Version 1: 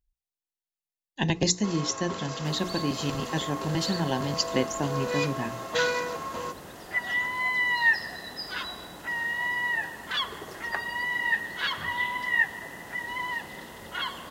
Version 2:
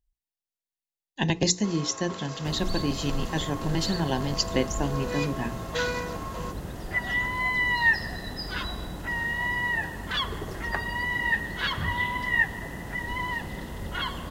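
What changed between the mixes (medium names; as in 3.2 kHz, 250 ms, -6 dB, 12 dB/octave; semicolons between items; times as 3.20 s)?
speech: send on; first sound -3.0 dB; second sound: remove high-pass 570 Hz 6 dB/octave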